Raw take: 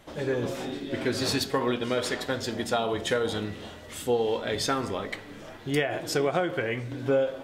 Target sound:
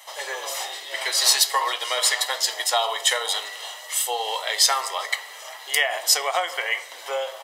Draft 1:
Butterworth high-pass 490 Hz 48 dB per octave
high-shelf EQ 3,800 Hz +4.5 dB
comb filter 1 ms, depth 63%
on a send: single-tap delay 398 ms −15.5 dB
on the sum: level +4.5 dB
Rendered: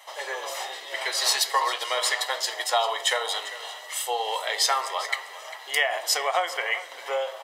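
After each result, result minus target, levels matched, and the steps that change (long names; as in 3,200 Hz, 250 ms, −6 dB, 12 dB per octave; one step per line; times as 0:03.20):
echo-to-direct +9.5 dB; 8,000 Hz band −3.0 dB
change: single-tap delay 398 ms −25 dB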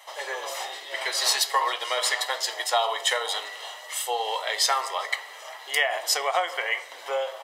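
8,000 Hz band −3.0 dB
change: high-shelf EQ 3,800 Hz +13 dB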